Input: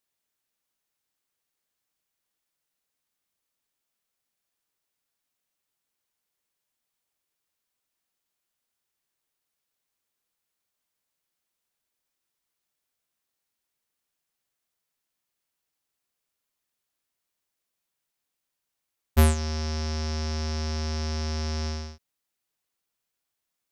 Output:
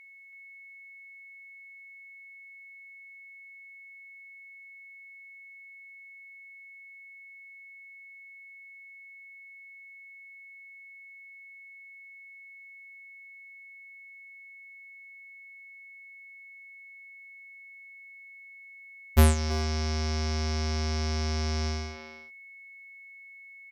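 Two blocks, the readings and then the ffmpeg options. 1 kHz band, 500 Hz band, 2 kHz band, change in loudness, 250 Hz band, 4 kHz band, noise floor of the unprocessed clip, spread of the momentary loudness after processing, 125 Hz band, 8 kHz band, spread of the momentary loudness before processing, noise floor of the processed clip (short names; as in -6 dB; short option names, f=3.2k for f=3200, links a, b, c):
+0.5 dB, +0.5 dB, +6.0 dB, -0.5 dB, 0.0 dB, 0.0 dB, -84 dBFS, 17 LU, 0.0 dB, 0.0 dB, 9 LU, -50 dBFS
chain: -filter_complex "[0:a]aeval=exprs='val(0)+0.00355*sin(2*PI*2200*n/s)':c=same,asplit=2[a][b];[b]adelay=330,highpass=300,lowpass=3.4k,asoftclip=type=hard:threshold=-17.5dB,volume=-7dB[c];[a][c]amix=inputs=2:normalize=0"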